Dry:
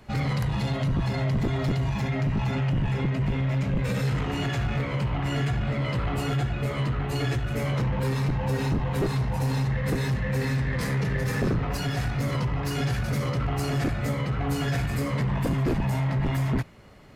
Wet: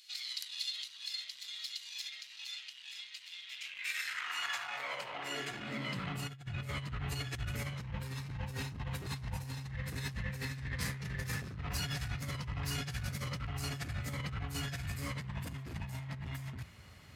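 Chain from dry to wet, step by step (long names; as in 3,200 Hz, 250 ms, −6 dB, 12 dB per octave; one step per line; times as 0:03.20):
brickwall limiter −24.5 dBFS, peak gain reduction 4 dB
high-pass filter sweep 3,900 Hz → 74 Hz, 0:03.39–0:06.82
compressor whose output falls as the input rises −29 dBFS, ratio −0.5
guitar amp tone stack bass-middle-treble 5-5-5
level +5.5 dB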